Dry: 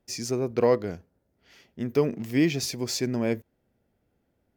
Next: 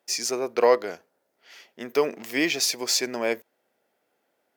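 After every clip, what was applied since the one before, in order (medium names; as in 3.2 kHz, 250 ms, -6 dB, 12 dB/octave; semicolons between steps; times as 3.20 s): high-pass 590 Hz 12 dB/octave; trim +7.5 dB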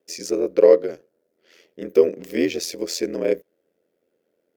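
resonant low shelf 610 Hz +8 dB, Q 3; ring modulator 42 Hz; trim -3 dB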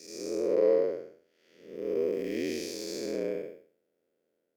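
spectral blur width 302 ms; trim -5 dB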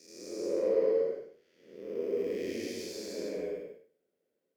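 gated-style reverb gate 260 ms rising, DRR -3 dB; trim -8 dB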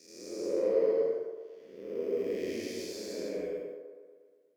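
feedback echo behind a band-pass 119 ms, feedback 62%, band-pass 700 Hz, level -7 dB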